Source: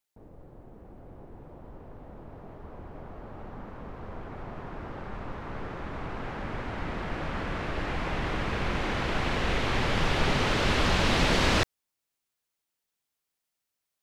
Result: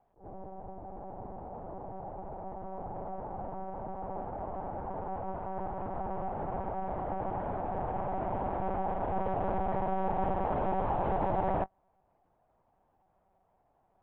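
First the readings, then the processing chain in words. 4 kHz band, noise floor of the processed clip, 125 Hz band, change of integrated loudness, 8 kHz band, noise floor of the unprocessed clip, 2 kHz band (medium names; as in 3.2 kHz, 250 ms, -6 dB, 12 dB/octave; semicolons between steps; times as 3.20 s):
under -30 dB, -72 dBFS, -7.5 dB, -6.0 dB, under -35 dB, -85 dBFS, -18.5 dB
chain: spectral levelling over time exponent 0.6; dynamic bell 130 Hz, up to -4 dB, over -41 dBFS, Q 1.1; resonant low-pass 780 Hz, resonance Q 4.1; flange 0.32 Hz, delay 1.4 ms, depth 7.1 ms, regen +62%; monotone LPC vocoder at 8 kHz 190 Hz; attacks held to a fixed rise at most 200 dB/s; trim -6 dB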